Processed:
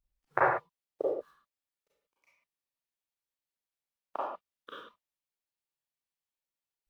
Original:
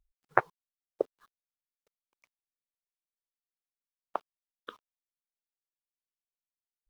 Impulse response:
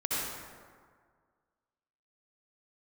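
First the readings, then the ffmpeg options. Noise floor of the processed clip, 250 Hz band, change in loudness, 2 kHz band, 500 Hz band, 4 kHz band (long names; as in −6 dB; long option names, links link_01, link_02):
below −85 dBFS, +1.0 dB, +1.0 dB, +1.0 dB, +2.5 dB, +2.0 dB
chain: -filter_complex "[1:a]atrim=start_sample=2205,afade=type=out:start_time=0.44:duration=0.01,atrim=end_sample=19845,asetrate=88200,aresample=44100[link_01];[0:a][link_01]afir=irnorm=-1:irlink=0"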